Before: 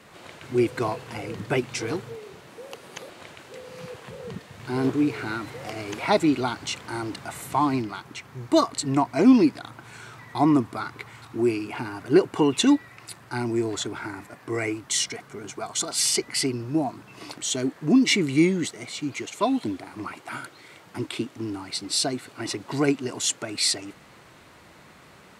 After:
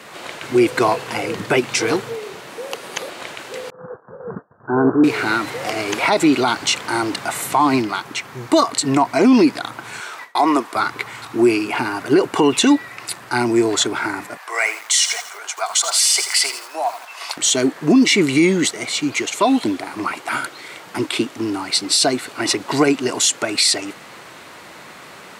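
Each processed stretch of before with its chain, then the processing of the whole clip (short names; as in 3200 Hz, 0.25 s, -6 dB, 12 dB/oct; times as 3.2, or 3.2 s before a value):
3.7–5.04 expander -34 dBFS + steep low-pass 1600 Hz 96 dB/oct
10–10.76 HPF 450 Hz + gate with hold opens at -37 dBFS, closes at -42 dBFS
14.37–17.37 HPF 680 Hz 24 dB/oct + lo-fi delay 83 ms, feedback 55%, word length 7-bit, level -12.5 dB
whole clip: HPF 380 Hz 6 dB/oct; maximiser +17.5 dB; gain -4.5 dB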